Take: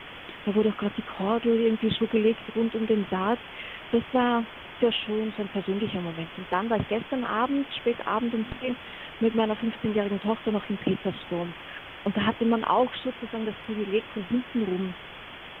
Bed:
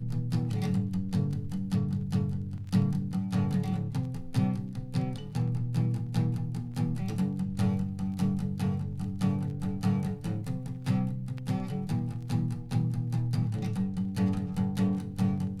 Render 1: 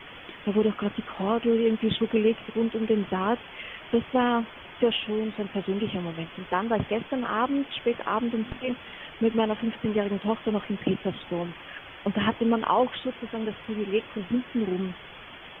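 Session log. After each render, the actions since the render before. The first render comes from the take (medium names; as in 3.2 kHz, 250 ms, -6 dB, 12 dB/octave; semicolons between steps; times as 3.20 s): noise reduction 6 dB, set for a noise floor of -43 dBFS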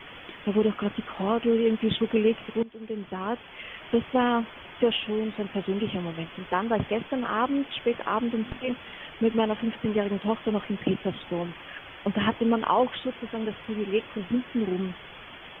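2.63–3.86 s: fade in, from -19.5 dB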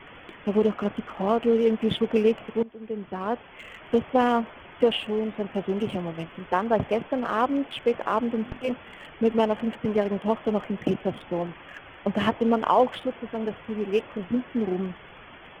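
local Wiener filter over 9 samples; dynamic bell 650 Hz, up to +5 dB, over -39 dBFS, Q 1.5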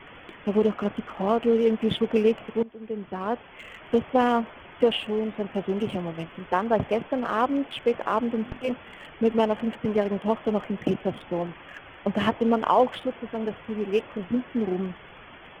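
no audible change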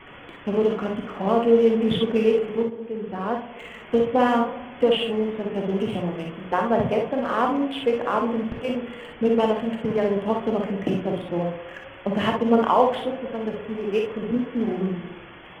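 on a send: tape echo 64 ms, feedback 85%, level -9 dB, low-pass 1.1 kHz; on the sum: gated-style reverb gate 80 ms rising, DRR 2.5 dB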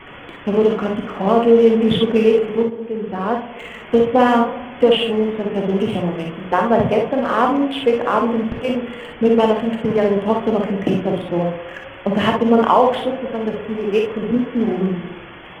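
trim +6 dB; peak limiter -2 dBFS, peak gain reduction 3 dB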